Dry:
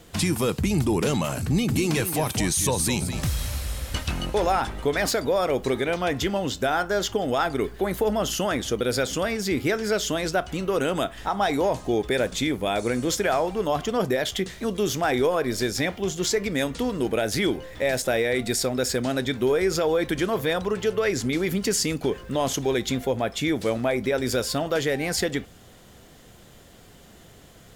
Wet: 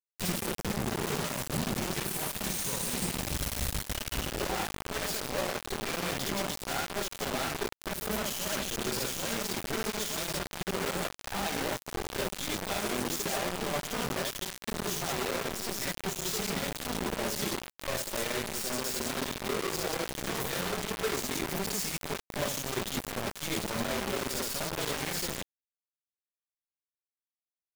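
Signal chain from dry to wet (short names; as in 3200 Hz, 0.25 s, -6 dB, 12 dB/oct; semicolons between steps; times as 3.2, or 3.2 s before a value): comb 5.1 ms, depth 46%; vocal rider within 3 dB 0.5 s; tube stage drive 35 dB, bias 0.45; on a send: loudspeakers at several distances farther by 21 m 0 dB, 58 m -11 dB; on the sum: bit-crush 5-bit; gain -1.5 dB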